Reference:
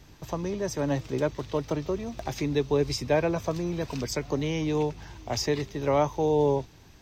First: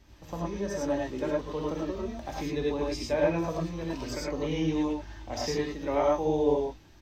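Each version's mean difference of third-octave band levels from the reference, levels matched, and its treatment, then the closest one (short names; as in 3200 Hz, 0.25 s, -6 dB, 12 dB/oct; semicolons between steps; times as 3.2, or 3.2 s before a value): 5.0 dB: high shelf 5800 Hz -5 dB; flange 1 Hz, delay 3.1 ms, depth 1.1 ms, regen -43%; doubler 19 ms -13 dB; non-linear reverb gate 0.13 s rising, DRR -3 dB; gain -3 dB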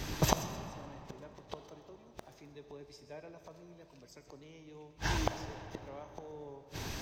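10.0 dB: low shelf 220 Hz -4.5 dB; flipped gate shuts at -29 dBFS, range -39 dB; on a send: thin delay 0.13 s, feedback 33%, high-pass 4900 Hz, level -12 dB; on the sum: digital reverb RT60 3.1 s, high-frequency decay 0.65×, pre-delay 0 ms, DRR 8 dB; gain +14.5 dB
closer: first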